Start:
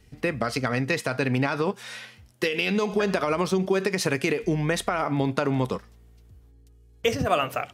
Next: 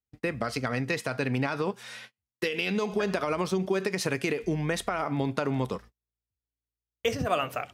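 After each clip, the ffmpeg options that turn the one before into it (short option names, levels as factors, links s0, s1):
-af "agate=range=0.0141:threshold=0.00891:ratio=16:detection=peak,volume=0.631"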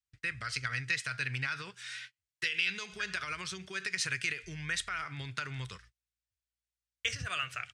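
-af "firequalizer=gain_entry='entry(120,0);entry(230,-20);entry(370,-15);entry(530,-18);entry(790,-17);entry(1500,6);entry(8700,6);entry(13000,-15)':delay=0.05:min_phase=1,volume=0.531"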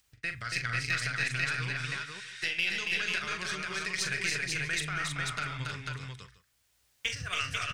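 -filter_complex "[0:a]acompressor=mode=upward:threshold=0.00178:ratio=2.5,aeval=exprs='0.211*(cos(1*acos(clip(val(0)/0.211,-1,1)))-cos(1*PI/2))+0.00596*(cos(8*acos(clip(val(0)/0.211,-1,1)))-cos(8*PI/2))':c=same,asplit=2[s0][s1];[s1]aecho=0:1:42|279|312|319|492|646:0.376|0.631|0.335|0.355|0.708|0.119[s2];[s0][s2]amix=inputs=2:normalize=0"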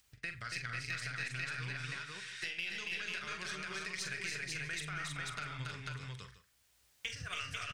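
-filter_complex "[0:a]acompressor=threshold=0.00631:ratio=2,asplit=2[s0][s1];[s1]adelay=47,volume=0.224[s2];[s0][s2]amix=inputs=2:normalize=0"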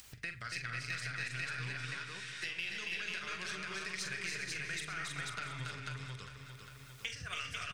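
-af "bandreject=f=50:t=h:w=6,bandreject=f=100:t=h:w=6,bandreject=f=150:t=h:w=6,aecho=1:1:402|804|1206|1608|2010:0.282|0.124|0.0546|0.024|0.0106,acompressor=mode=upward:threshold=0.00708:ratio=2.5"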